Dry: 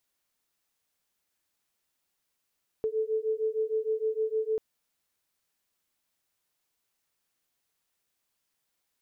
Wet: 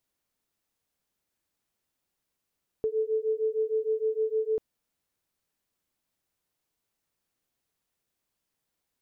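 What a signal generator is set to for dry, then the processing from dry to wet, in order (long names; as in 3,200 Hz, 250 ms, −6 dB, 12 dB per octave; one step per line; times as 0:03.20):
two tones that beat 435 Hz, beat 6.5 Hz, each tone −29.5 dBFS 1.74 s
tilt shelving filter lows +4 dB, about 650 Hz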